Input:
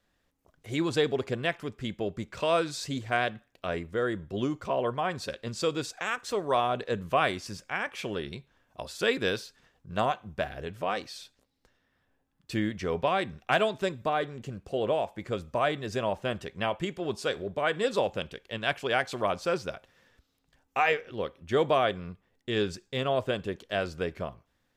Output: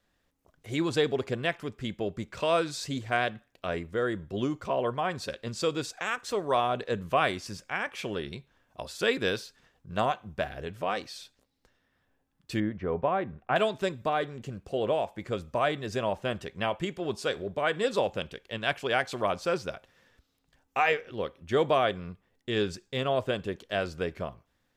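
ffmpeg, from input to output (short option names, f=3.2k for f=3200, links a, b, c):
-filter_complex "[0:a]asettb=1/sr,asplit=3[a][b][c];[a]atrim=end=12.604[d];[b]atrim=start=12.6:end=13.56,asetpts=PTS-STARTPTS,afade=t=in:d=0.004:c=qsin,afade=t=out:st=0.956:d=0.004:c=qsin,lowpass=1.4k[e];[c]atrim=start=13.556[f];[d][e]acrossfade=d=0.004:c1=hsin:c2=qsin[g];[g][f]acrossfade=d=0.004:c1=qsin:c2=hsin"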